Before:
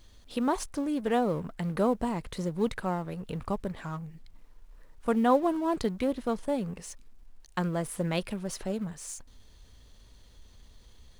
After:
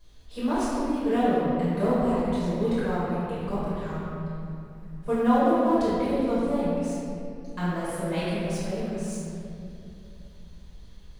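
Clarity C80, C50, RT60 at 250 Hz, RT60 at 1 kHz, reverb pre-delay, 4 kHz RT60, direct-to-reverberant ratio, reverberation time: -2.5 dB, -4.5 dB, 3.6 s, 2.3 s, 4 ms, 1.6 s, -12.5 dB, 2.7 s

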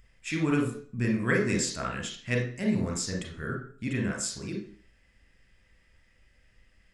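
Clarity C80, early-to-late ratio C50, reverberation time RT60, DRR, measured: 11.0 dB, 6.0 dB, 0.45 s, 1.5 dB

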